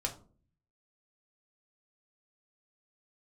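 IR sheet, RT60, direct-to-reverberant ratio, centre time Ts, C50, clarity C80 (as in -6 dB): 0.45 s, 0.5 dB, 12 ms, 12.5 dB, 17.5 dB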